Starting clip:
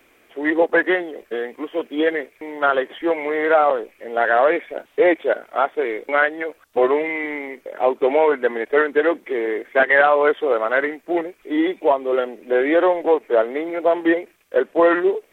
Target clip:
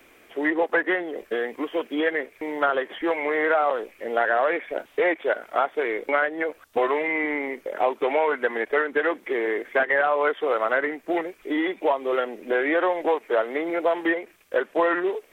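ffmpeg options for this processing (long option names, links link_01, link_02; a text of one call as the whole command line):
ffmpeg -i in.wav -filter_complex "[0:a]acrossover=split=820|2700[link_01][link_02][link_03];[link_01]acompressor=threshold=-27dB:ratio=4[link_04];[link_02]acompressor=threshold=-25dB:ratio=4[link_05];[link_03]acompressor=threshold=-47dB:ratio=4[link_06];[link_04][link_05][link_06]amix=inputs=3:normalize=0,volume=2dB" out.wav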